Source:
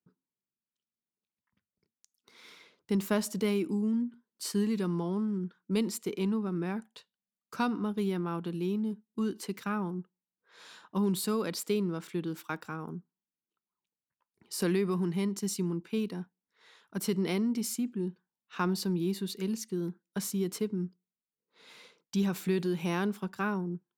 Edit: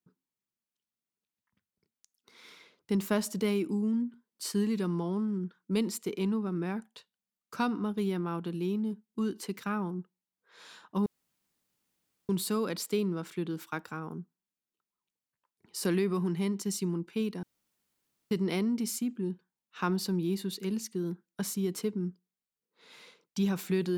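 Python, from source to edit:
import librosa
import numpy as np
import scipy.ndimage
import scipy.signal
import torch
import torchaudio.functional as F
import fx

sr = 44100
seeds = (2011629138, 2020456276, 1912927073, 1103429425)

y = fx.edit(x, sr, fx.insert_room_tone(at_s=11.06, length_s=1.23),
    fx.room_tone_fill(start_s=16.2, length_s=0.88), tone=tone)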